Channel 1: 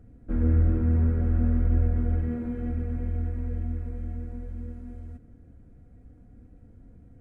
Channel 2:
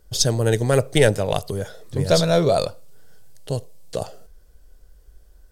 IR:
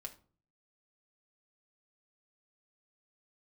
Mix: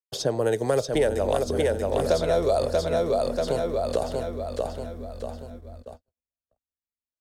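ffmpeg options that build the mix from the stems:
-filter_complex "[0:a]aecho=1:1:4:0.34,adelay=650,volume=-4.5dB,asplit=2[link_01][link_02];[link_02]volume=-12.5dB[link_03];[1:a]highpass=frequency=330:poles=1,equalizer=frequency=610:width=0.32:gain=10.5,volume=-3.5dB,asplit=2[link_04][link_05];[link_05]volume=-5.5dB[link_06];[link_03][link_06]amix=inputs=2:normalize=0,aecho=0:1:635|1270|1905|2540|3175|3810:1|0.44|0.194|0.0852|0.0375|0.0165[link_07];[link_01][link_04][link_07]amix=inputs=3:normalize=0,agate=range=-57dB:threshold=-40dB:ratio=16:detection=peak,acrossover=split=120|870|4900[link_08][link_09][link_10][link_11];[link_08]acompressor=threshold=-36dB:ratio=4[link_12];[link_09]acompressor=threshold=-22dB:ratio=4[link_13];[link_10]acompressor=threshold=-36dB:ratio=4[link_14];[link_11]acompressor=threshold=-41dB:ratio=4[link_15];[link_12][link_13][link_14][link_15]amix=inputs=4:normalize=0"

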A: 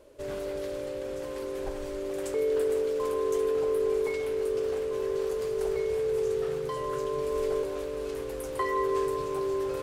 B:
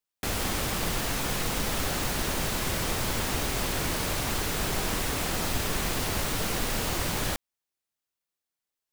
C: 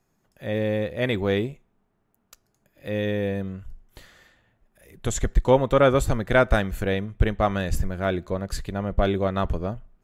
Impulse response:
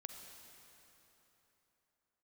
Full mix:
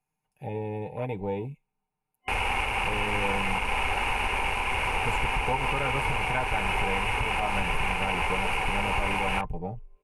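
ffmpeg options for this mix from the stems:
-filter_complex "[0:a]lowpass=2500,acompressor=threshold=-36dB:ratio=6,adelay=2200,volume=-17.5dB[link_01];[1:a]lowpass=8200,equalizer=frequency=170:width=1.1:gain=-13.5,adelay=2050,volume=2.5dB[link_02];[2:a]aecho=1:1:6.6:0.63,acompressor=threshold=-32dB:ratio=2,volume=-0.5dB[link_03];[link_01][link_02][link_03]amix=inputs=3:normalize=0,afwtdn=0.0251,superequalizer=6b=0.501:8b=0.708:9b=2.82:12b=3.55:16b=3.55,alimiter=limit=-16dB:level=0:latency=1:release=183"

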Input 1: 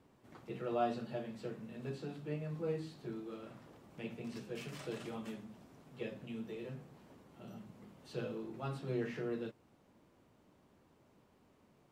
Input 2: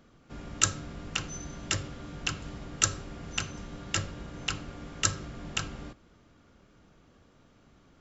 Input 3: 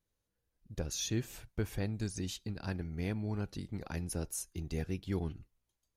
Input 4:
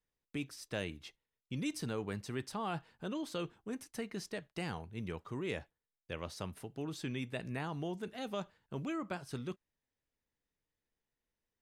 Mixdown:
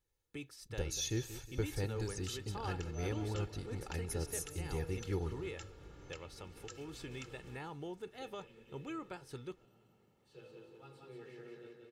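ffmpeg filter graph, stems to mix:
ffmpeg -i stem1.wav -i stem2.wav -i stem3.wav -i stem4.wav -filter_complex "[0:a]adynamicequalizer=threshold=0.001:dfrequency=1800:dqfactor=0.7:tfrequency=1800:tqfactor=0.7:attack=5:release=100:ratio=0.375:range=2.5:mode=boostabove:tftype=highshelf,adelay=2200,volume=-17dB,asplit=2[link_01][link_02];[link_02]volume=-3dB[link_03];[1:a]acompressor=threshold=-39dB:ratio=2,adelay=1650,volume=-13dB[link_04];[2:a]volume=-3dB,asplit=2[link_05][link_06];[link_06]volume=-14dB[link_07];[3:a]volume=-5.5dB[link_08];[link_04][link_08]amix=inputs=2:normalize=0,alimiter=level_in=10.5dB:limit=-24dB:level=0:latency=1:release=278,volume=-10.5dB,volume=0dB[link_09];[link_03][link_07]amix=inputs=2:normalize=0,aecho=0:1:182|364|546|728|910|1092|1274|1456:1|0.54|0.292|0.157|0.085|0.0459|0.0248|0.0134[link_10];[link_01][link_05][link_09][link_10]amix=inputs=4:normalize=0,aecho=1:1:2.3:0.57" out.wav

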